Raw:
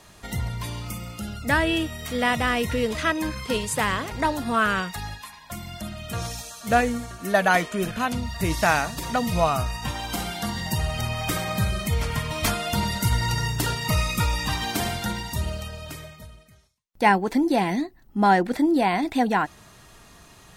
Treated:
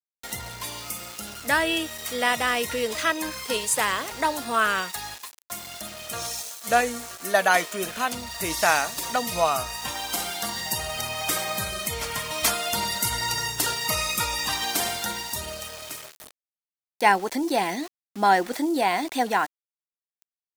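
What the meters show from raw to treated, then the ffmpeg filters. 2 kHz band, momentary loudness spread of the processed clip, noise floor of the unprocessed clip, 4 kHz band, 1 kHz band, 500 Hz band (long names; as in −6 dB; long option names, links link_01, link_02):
+0.5 dB, 13 LU, −51 dBFS, +2.5 dB, 0.0 dB, −1.0 dB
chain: -af "aeval=exprs='val(0)*gte(abs(val(0)),0.0133)':channel_layout=same,bass=frequency=250:gain=-15,treble=frequency=4000:gain=6"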